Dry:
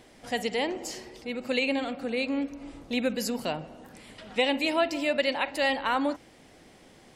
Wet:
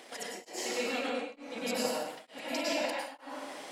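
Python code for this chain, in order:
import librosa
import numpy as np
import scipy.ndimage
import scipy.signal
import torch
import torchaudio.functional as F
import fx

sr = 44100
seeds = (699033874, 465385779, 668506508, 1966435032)

y = scipy.signal.sosfilt(scipy.signal.butter(2, 460.0, 'highpass', fs=sr, output='sos'), x)
y = fx.over_compress(y, sr, threshold_db=-38.0, ratio=-1.0)
y = fx.stretch_grains(y, sr, factor=0.52, grain_ms=64.0)
y = fx.rev_plate(y, sr, seeds[0], rt60_s=1.2, hf_ratio=0.8, predelay_ms=90, drr_db=-5.5)
y = y * np.abs(np.cos(np.pi * 1.1 * np.arange(len(y)) / sr))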